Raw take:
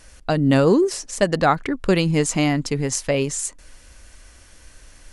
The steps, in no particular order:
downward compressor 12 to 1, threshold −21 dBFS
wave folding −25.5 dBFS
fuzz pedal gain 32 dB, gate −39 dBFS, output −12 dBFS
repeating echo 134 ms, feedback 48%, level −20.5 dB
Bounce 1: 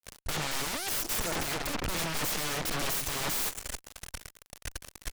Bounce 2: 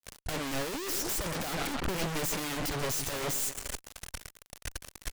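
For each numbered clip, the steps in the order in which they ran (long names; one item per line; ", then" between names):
downward compressor, then repeating echo, then fuzz pedal, then wave folding
repeating echo, then fuzz pedal, then downward compressor, then wave folding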